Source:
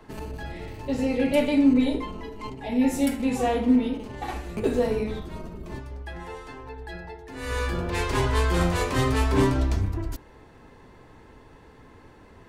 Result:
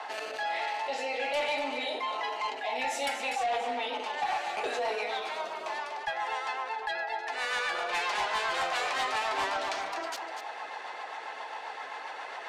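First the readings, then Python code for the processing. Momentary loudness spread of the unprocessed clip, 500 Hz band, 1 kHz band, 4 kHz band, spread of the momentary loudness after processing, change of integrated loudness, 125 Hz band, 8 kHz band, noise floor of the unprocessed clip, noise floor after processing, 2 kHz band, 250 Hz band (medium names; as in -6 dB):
17 LU, -6.5 dB, +3.0 dB, +2.5 dB, 10 LU, -7.0 dB, under -35 dB, -3.5 dB, -51 dBFS, -42 dBFS, +3.0 dB, -24.5 dB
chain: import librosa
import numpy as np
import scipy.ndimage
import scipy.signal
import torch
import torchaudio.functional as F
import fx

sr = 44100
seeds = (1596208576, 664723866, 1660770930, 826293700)

p1 = scipy.signal.sosfilt(scipy.signal.butter(2, 3500.0, 'lowpass', fs=sr, output='sos'), x)
p2 = fx.tilt_eq(p1, sr, slope=4.5)
p3 = fx.notch(p2, sr, hz=1000.0, q=21.0)
p4 = fx.rider(p3, sr, range_db=5, speed_s=0.5)
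p5 = p3 + (p4 * librosa.db_to_amplitude(2.0))
p6 = fx.highpass_res(p5, sr, hz=760.0, q=4.1)
p7 = fx.rotary_switch(p6, sr, hz=1.2, then_hz=7.5, switch_at_s=2.5)
p8 = 10.0 ** (-16.5 / 20.0) * np.tanh(p7 / 10.0 ** (-16.5 / 20.0))
p9 = p8 + fx.echo_single(p8, sr, ms=244, db=-11.5, dry=0)
p10 = fx.env_flatten(p9, sr, amount_pct=50)
y = p10 * librosa.db_to_amplitude(-9.0)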